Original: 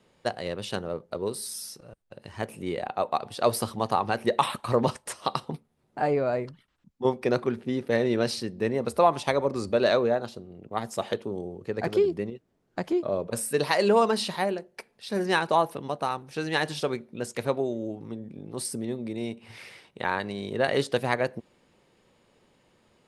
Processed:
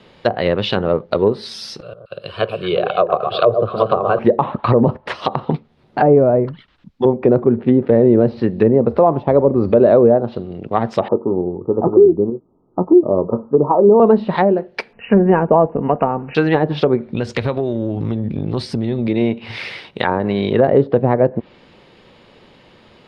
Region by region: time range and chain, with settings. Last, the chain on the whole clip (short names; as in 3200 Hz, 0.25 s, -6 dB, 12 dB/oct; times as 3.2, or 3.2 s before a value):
1.82–4.19 HPF 130 Hz + fixed phaser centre 1300 Hz, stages 8 + echo with dull and thin repeats by turns 0.118 s, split 1200 Hz, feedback 67%, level -6.5 dB
11.08–14 rippled Chebyshev low-pass 1300 Hz, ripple 6 dB + doubler 22 ms -13 dB
14.93–16.35 brick-wall FIR low-pass 3000 Hz + low shelf 85 Hz +9.5 dB + comb 4.3 ms, depth 33%
17.06–19.08 bell 69 Hz +14.5 dB 1.7 oct + compressor, threshold -31 dBFS
whole clip: treble ducked by the level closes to 580 Hz, closed at -23.5 dBFS; resonant high shelf 5700 Hz -12 dB, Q 1.5; maximiser +17 dB; gain -1 dB